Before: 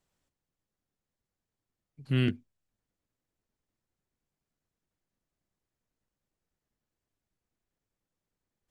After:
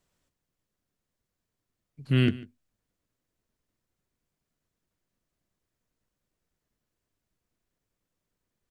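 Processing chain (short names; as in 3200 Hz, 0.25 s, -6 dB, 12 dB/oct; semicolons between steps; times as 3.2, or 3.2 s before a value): notch 820 Hz, Q 12; on a send: echo 0.146 s -20 dB; on the sum: gain +4 dB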